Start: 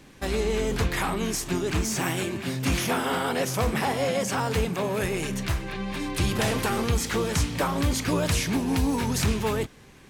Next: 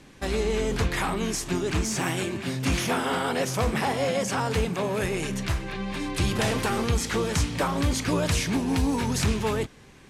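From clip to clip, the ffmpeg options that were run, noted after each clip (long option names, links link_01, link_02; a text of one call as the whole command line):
ffmpeg -i in.wav -af "lowpass=11000" out.wav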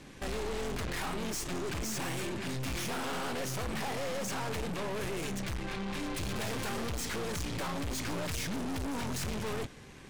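ffmpeg -i in.wav -af "aeval=exprs='(tanh(70.8*val(0)+0.55)-tanh(0.55))/70.8':channel_layout=same,volume=2.5dB" out.wav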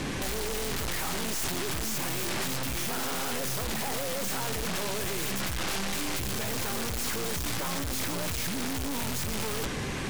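ffmpeg -i in.wav -af "aeval=exprs='0.0299*sin(PI/2*4.47*val(0)/0.0299)':channel_layout=same,volume=3dB" out.wav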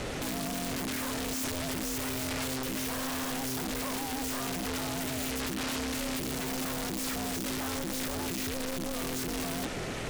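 ffmpeg -i in.wav -af "aeval=exprs='val(0)*sin(2*PI*260*n/s)':channel_layout=same" out.wav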